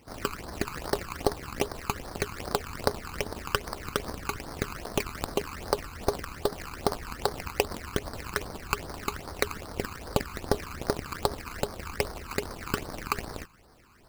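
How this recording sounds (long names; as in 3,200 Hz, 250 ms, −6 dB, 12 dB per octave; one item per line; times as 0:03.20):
aliases and images of a low sample rate 3,500 Hz, jitter 20%
phaser sweep stages 12, 2.5 Hz, lowest notch 560–2,700 Hz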